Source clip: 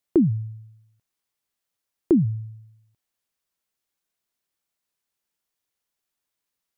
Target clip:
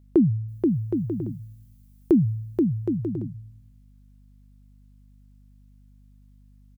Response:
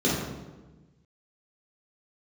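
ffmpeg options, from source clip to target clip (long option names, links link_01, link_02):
-filter_complex "[0:a]asettb=1/sr,asplit=3[link_01][link_02][link_03];[link_01]atrim=end=0.484[link_04];[link_02]atrim=start=0.48:end=2.19,asetpts=PTS-STARTPTS,afade=type=in:duration=0.004:curve=qsin,afade=type=out:start_time=1.706:duration=0.004:curve=qsin,aemphasis=mode=production:type=50kf[link_05];[link_03]atrim=start=2.186[link_06];[link_04][link_05]acrossfade=duration=0.004:curve1=hsin:curve2=qsin[link_07];[link_07][link_06]acrossfade=duration=0.004:curve1=qsin:curve2=hsin,aecho=1:1:480|768|940.8|1044|1107:0.631|0.398|0.251|0.158|0.1,aeval=exprs='val(0)+0.00251*(sin(2*PI*50*n/s)+sin(2*PI*2*50*n/s)/2+sin(2*PI*3*50*n/s)/3+sin(2*PI*4*50*n/s)/4+sin(2*PI*5*50*n/s)/5)':channel_layout=same"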